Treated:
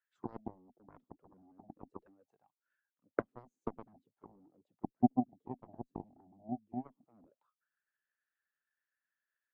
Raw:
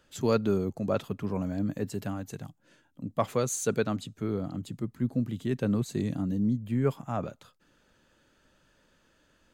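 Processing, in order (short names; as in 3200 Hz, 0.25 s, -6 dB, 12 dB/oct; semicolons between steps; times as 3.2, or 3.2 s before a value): auto-wah 250–1800 Hz, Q 6.3, down, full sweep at -27 dBFS; harmonic-percussive split percussive +6 dB; added harmonics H 3 -9 dB, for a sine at -19 dBFS; gain +4.5 dB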